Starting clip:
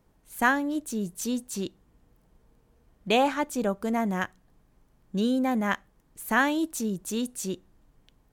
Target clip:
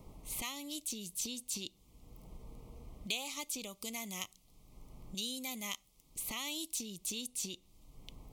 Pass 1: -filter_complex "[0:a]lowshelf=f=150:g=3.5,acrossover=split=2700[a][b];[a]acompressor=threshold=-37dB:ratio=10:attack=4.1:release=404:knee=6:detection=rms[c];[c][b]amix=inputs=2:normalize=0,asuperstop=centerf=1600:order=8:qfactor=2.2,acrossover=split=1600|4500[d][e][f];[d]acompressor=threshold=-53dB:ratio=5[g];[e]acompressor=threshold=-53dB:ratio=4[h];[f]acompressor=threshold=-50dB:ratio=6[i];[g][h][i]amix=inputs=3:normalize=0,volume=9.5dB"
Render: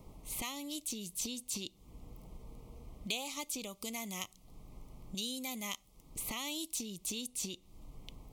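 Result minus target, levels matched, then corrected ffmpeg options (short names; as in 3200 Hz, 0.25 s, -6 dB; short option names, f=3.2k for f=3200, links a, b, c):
compressor: peak gain reduction -10 dB
-filter_complex "[0:a]lowshelf=f=150:g=3.5,acrossover=split=2700[a][b];[a]acompressor=threshold=-48dB:ratio=10:attack=4.1:release=404:knee=6:detection=rms[c];[c][b]amix=inputs=2:normalize=0,asuperstop=centerf=1600:order=8:qfactor=2.2,acrossover=split=1600|4500[d][e][f];[d]acompressor=threshold=-53dB:ratio=5[g];[e]acompressor=threshold=-53dB:ratio=4[h];[f]acompressor=threshold=-50dB:ratio=6[i];[g][h][i]amix=inputs=3:normalize=0,volume=9.5dB"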